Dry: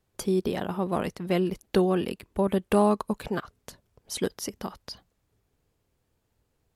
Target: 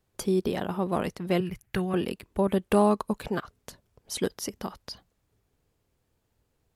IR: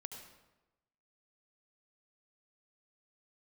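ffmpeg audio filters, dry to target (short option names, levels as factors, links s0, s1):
-filter_complex "[0:a]asettb=1/sr,asplit=3[s0][s1][s2];[s0]atrim=end=1.404[s3];[s1]atrim=start=1.4:end=1.94,asetpts=PTS-STARTPTS,afade=t=in:d=0.004:c=qsin,afade=t=out:st=0.536:d=0.004:c=qsin,equalizer=f=125:t=o:w=1:g=10,equalizer=f=250:t=o:w=1:g=-11,equalizer=f=500:t=o:w=1:g=-10,equalizer=f=1000:t=o:w=1:g=-4,equalizer=f=2000:t=o:w=1:g=7,equalizer=f=4000:t=o:w=1:g=-8,equalizer=f=8000:t=o:w=1:g=-3[s4];[s2]atrim=start=1.936[s5];[s3][s4]acrossfade=d=0.004:c1=hsin:c2=qsin[s6];[s6][s5]acrossfade=d=0.004:c1=qsin:c2=hsin"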